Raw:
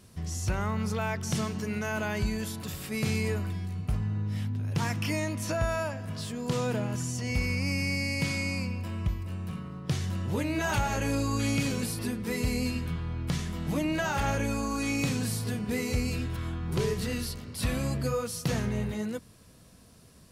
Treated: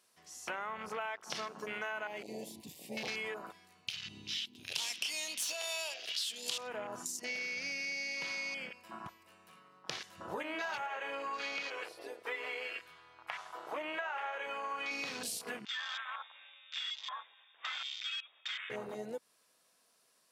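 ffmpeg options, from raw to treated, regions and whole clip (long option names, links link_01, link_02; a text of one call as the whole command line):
ffmpeg -i in.wav -filter_complex "[0:a]asettb=1/sr,asplit=3[link_01][link_02][link_03];[link_01]atrim=end=2.074[link_04];[link_02]atrim=start=2.07:end=3.08,asetpts=PTS-STARTPTS,afade=type=in:duration=0.004:curve=qsin,afade=type=out:start_time=1.006:duration=0.004:curve=qsin,asubboost=boost=10.5:cutoff=240,volume=27dB,asoftclip=hard,volume=-27dB,asuperstop=centerf=1400:order=4:qfactor=1.1[link_05];[link_03]atrim=start=3.076[link_06];[link_04][link_05]acrossfade=duration=0.004:curve1=hsin:curve2=qsin[link_07];[link_07][link_06]acrossfade=duration=0.004:curve1=qsin:curve2=hsin,asettb=1/sr,asplit=3[link_08][link_09][link_10];[link_08]atrim=end=3.884[link_11];[link_09]atrim=start=3.88:end=6.58,asetpts=PTS-STARTPTS,afade=type=in:duration=0.004:curve=qsin,afade=type=out:start_time=2.696:duration=0.004:curve=qsin,highshelf=frequency=2200:width_type=q:width=3:gain=12.5,aeval=exprs='clip(val(0),-1,0.0708)':channel_layout=same[link_12];[link_10]atrim=start=6.576[link_13];[link_11][link_12]acrossfade=duration=0.004:curve1=hsin:curve2=qsin[link_14];[link_14][link_13]acrossfade=duration=0.004:curve1=qsin:curve2=hsin,asettb=1/sr,asplit=3[link_15][link_16][link_17];[link_15]atrim=end=10.864[link_18];[link_16]atrim=start=10.86:end=14.91,asetpts=PTS-STARTPTS,afade=type=in:duration=0.004:curve=qsin,afade=type=out:start_time=4.046:duration=0.004:curve=qsin,acrossover=split=4700[link_19][link_20];[link_20]acompressor=threshold=-53dB:ratio=4:attack=1:release=60[link_21];[link_19][link_21]amix=inputs=2:normalize=0,equalizer=frequency=220:width=1.9:gain=-14.5[link_22];[link_17]atrim=start=14.906[link_23];[link_18][link_22]acrossfade=duration=0.004:curve1=hsin:curve2=qsin[link_24];[link_24][link_23]acrossfade=duration=0.004:curve1=qsin:curve2=hsin,asettb=1/sr,asplit=3[link_25][link_26][link_27];[link_25]atrim=end=15.654[link_28];[link_26]atrim=start=15.65:end=18.7,asetpts=PTS-STARTPTS,afade=type=in:duration=0.004:curve=qsin,afade=type=out:start_time=3.046:duration=0.004:curve=qsin,highpass=frequency=1100:poles=1,asoftclip=type=hard:threshold=-36dB,lowpass=frequency=3200:width_type=q:width=0.5098,lowpass=frequency=3200:width_type=q:width=0.6013,lowpass=frequency=3200:width_type=q:width=0.9,lowpass=frequency=3200:width_type=q:width=2.563,afreqshift=-3800[link_29];[link_27]atrim=start=18.696[link_30];[link_28][link_29]acrossfade=duration=0.004:curve1=hsin:curve2=qsin[link_31];[link_31][link_30]acrossfade=duration=0.004:curve1=qsin:curve2=hsin,highpass=680,afwtdn=0.00794,acompressor=threshold=-43dB:ratio=6,volume=6.5dB" out.wav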